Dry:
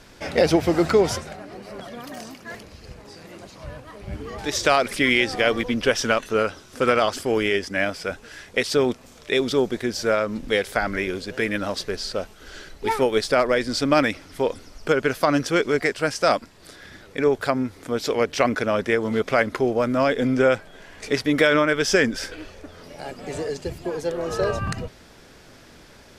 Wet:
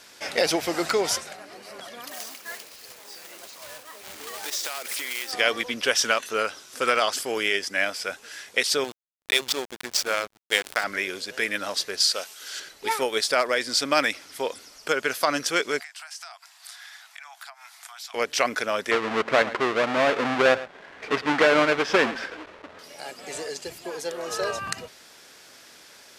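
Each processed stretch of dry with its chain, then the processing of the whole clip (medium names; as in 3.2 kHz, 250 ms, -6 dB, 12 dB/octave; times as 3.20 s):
2.11–5.33 s: block-companded coder 3-bit + compression 8:1, threshold -28 dBFS + tone controls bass -8 dB, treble -1 dB
8.84–10.84 s: tilt EQ +2.5 dB/octave + hysteresis with a dead band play -19 dBFS
12.00–12.60 s: high-pass 410 Hz 6 dB/octave + treble shelf 2.4 kHz +8 dB
15.81–18.14 s: steep high-pass 680 Hz 96 dB/octave + compression 8:1, threshold -39 dBFS
18.91–22.79 s: square wave that keeps the level + low-pass 2.1 kHz + delay 111 ms -16.5 dB
whole clip: high-pass 850 Hz 6 dB/octave; treble shelf 4 kHz +7 dB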